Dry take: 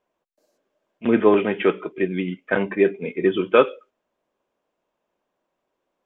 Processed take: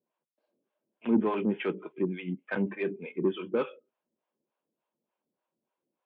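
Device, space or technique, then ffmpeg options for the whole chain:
guitar amplifier with harmonic tremolo: -filter_complex "[0:a]acrossover=split=550[a][b];[a]aeval=exprs='val(0)*(1-1/2+1/2*cos(2*PI*3.4*n/s))':c=same[c];[b]aeval=exprs='val(0)*(1-1/2-1/2*cos(2*PI*3.4*n/s))':c=same[d];[c][d]amix=inputs=2:normalize=0,asoftclip=type=tanh:threshold=-16dB,highpass=97,equalizer=f=150:t=q:w=4:g=7,equalizer=f=220:t=q:w=4:g=8,equalizer=f=330:t=q:w=4:g=4,equalizer=f=680:t=q:w=4:g=-4,equalizer=f=1.2k:t=q:w=4:g=-4,equalizer=f=1.9k:t=q:w=4:g=-4,lowpass=f=3.4k:w=0.5412,lowpass=f=3.4k:w=1.3066,equalizer=f=950:t=o:w=0.77:g=2.5,volume=-5.5dB"

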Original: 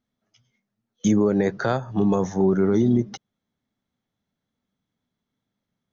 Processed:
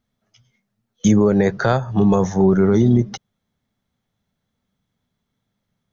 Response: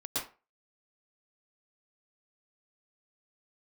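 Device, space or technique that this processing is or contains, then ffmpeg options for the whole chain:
low shelf boost with a cut just above: -af "lowshelf=f=110:g=6.5,equalizer=f=290:t=o:w=0.61:g=-5.5,volume=5.5dB"

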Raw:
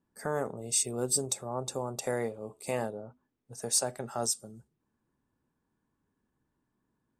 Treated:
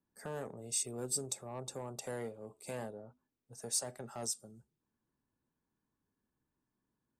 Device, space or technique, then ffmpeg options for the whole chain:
one-band saturation: -filter_complex "[0:a]acrossover=split=300|4100[a][b][c];[b]asoftclip=type=tanh:threshold=-30dB[d];[a][d][c]amix=inputs=3:normalize=0,volume=-7dB"

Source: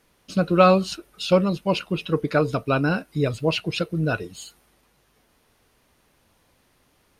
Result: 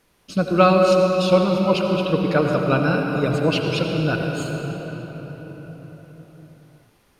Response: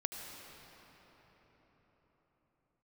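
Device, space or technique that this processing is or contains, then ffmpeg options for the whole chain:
cathedral: -filter_complex "[1:a]atrim=start_sample=2205[a];[0:a][a]afir=irnorm=-1:irlink=0,volume=2dB"

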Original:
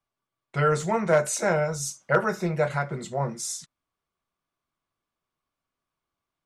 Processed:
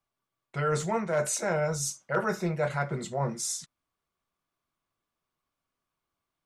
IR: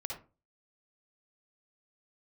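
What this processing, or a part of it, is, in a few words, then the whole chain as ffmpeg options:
compression on the reversed sound: -af "areverse,acompressor=threshold=-24dB:ratio=6,areverse"

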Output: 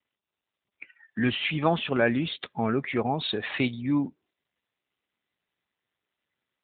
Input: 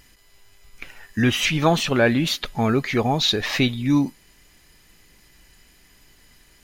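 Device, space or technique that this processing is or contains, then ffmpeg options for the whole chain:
mobile call with aggressive noise cancelling: -af "highpass=f=150:p=1,afftdn=nr=36:nf=-39,volume=-4.5dB" -ar 8000 -c:a libopencore_amrnb -b:a 10200

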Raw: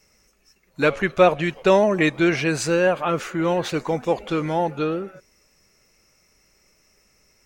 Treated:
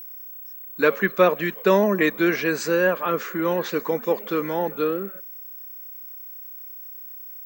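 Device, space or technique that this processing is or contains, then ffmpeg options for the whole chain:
old television with a line whistle: -af "highpass=f=190:w=0.5412,highpass=f=190:w=1.3066,equalizer=f=200:t=q:w=4:g=7,equalizer=f=450:t=q:w=4:g=6,equalizer=f=750:t=q:w=4:g=-6,equalizer=f=1.1k:t=q:w=4:g=5,equalizer=f=1.7k:t=q:w=4:g=6,equalizer=f=2.8k:t=q:w=4:g=-3,lowpass=f=7.8k:w=0.5412,lowpass=f=7.8k:w=1.3066,aeval=exprs='val(0)+0.0224*sin(2*PI*15734*n/s)':c=same,volume=-3dB"

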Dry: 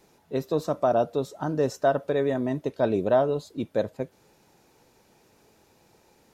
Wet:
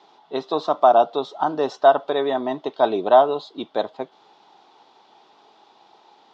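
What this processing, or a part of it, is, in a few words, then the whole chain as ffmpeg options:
phone earpiece: -af "highpass=460,equalizer=f=520:t=q:w=4:g=-10,equalizer=f=790:t=q:w=4:g=7,equalizer=f=1.1k:t=q:w=4:g=4,equalizer=f=1.7k:t=q:w=4:g=-7,equalizer=f=2.4k:t=q:w=4:g=-8,equalizer=f=3.4k:t=q:w=4:g=7,lowpass=f=4.3k:w=0.5412,lowpass=f=4.3k:w=1.3066,volume=9dB"

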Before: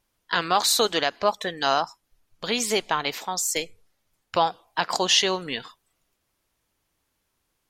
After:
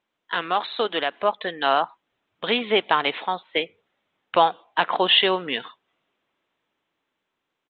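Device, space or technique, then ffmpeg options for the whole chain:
Bluetooth headset: -af "highpass=220,dynaudnorm=f=360:g=9:m=11.5dB,aresample=8000,aresample=44100,volume=-1.5dB" -ar 16000 -c:a sbc -b:a 64k

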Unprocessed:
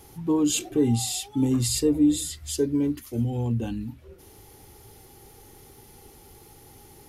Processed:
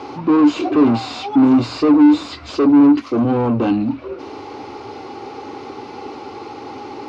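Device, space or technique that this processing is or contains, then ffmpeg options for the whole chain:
overdrive pedal into a guitar cabinet: -filter_complex "[0:a]asplit=2[a][b];[b]highpass=f=720:p=1,volume=31dB,asoftclip=type=tanh:threshold=-11.5dB[c];[a][c]amix=inputs=2:normalize=0,lowpass=f=2.4k:p=1,volume=-6dB,highpass=92,equalizer=f=160:t=q:w=4:g=-9,equalizer=f=280:t=q:w=4:g=9,equalizer=f=1.1k:t=q:w=4:g=5,equalizer=f=1.8k:t=q:w=4:g=-10,equalizer=f=3.3k:t=q:w=4:g=-9,lowpass=f=4.4k:w=0.5412,lowpass=f=4.4k:w=1.3066,volume=1.5dB"

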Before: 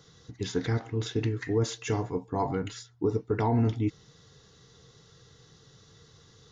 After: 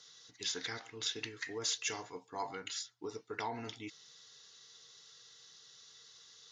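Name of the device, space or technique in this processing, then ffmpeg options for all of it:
piezo pickup straight into a mixer: -af "lowpass=5.4k,aderivative,volume=9.5dB"

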